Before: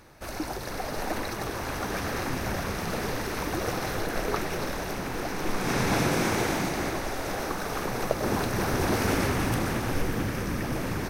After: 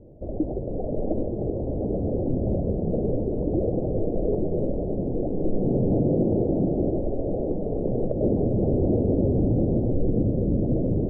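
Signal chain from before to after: steep low-pass 610 Hz 48 dB/octave; peak limiter -21.5 dBFS, peak gain reduction 8.5 dB; trim +8 dB

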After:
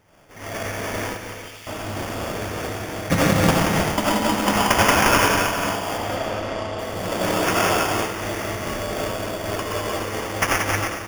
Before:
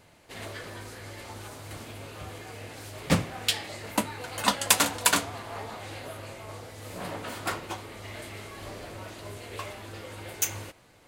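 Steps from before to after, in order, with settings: reverberation RT60 1.5 s, pre-delay 45 ms, DRR -5.5 dB; level rider gain up to 8 dB; sample-rate reducer 4 kHz, jitter 0%; 1.16–1.67 s: ladder high-pass 1.9 kHz, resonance 30%; 5.98–6.79 s: distance through air 98 m; bouncing-ball echo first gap 180 ms, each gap 0.75×, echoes 5; random flutter of the level, depth 50%

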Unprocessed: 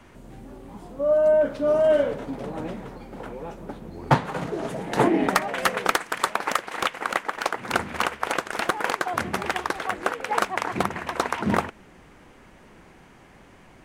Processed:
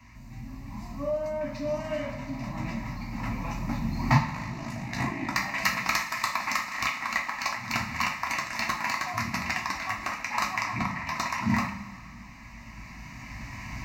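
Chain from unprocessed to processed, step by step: recorder AGC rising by 6.9 dB/s; high-pass 44 Hz; high-order bell 530 Hz -11.5 dB; band-stop 1.2 kHz, Q 16; 10.65–11.05 s: low-pass 2.8 kHz 6 dB/octave; static phaser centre 2.2 kHz, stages 8; 4.27–5.38 s: AM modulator 53 Hz, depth 90%; two-slope reverb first 0.38 s, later 2.8 s, from -17 dB, DRR -0.5 dB

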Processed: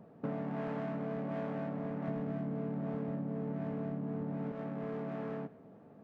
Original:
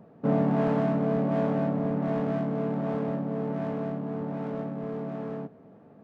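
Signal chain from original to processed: 2.08–4.52 s: bass shelf 470 Hz +11 dB; compression 6:1, threshold -32 dBFS, peak gain reduction 14.5 dB; dynamic bell 2 kHz, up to +6 dB, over -57 dBFS, Q 0.91; trim -3.5 dB

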